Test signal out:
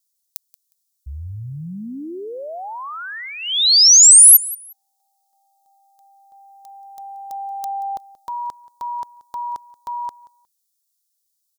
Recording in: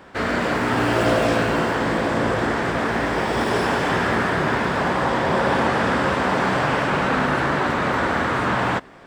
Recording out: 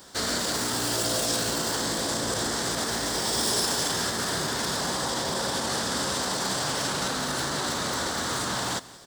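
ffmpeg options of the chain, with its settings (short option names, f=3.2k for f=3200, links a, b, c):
-filter_complex "[0:a]alimiter=limit=-15.5dB:level=0:latency=1:release=27,aexciter=amount=14.1:drive=2.7:freq=3.7k,asplit=2[a][b];[b]aecho=0:1:180|360:0.1|0.021[c];[a][c]amix=inputs=2:normalize=0,volume=-7dB"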